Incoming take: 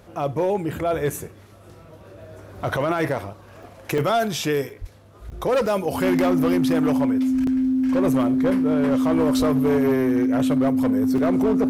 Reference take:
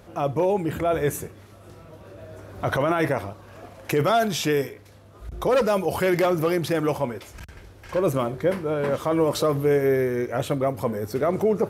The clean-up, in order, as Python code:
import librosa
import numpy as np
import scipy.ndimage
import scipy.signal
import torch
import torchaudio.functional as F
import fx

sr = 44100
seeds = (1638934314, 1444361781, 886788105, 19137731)

y = fx.fix_declip(x, sr, threshold_db=-14.5)
y = fx.notch(y, sr, hz=260.0, q=30.0)
y = fx.highpass(y, sr, hz=140.0, slope=24, at=(4.8, 4.92), fade=0.02)
y = fx.highpass(y, sr, hz=140.0, slope=24, at=(9.38, 9.5), fade=0.02)
y = fx.fix_interpolate(y, sr, at_s=(1.1, 3.63, 3.98, 4.7, 5.3, 5.66, 7.47, 11.18), length_ms=3.2)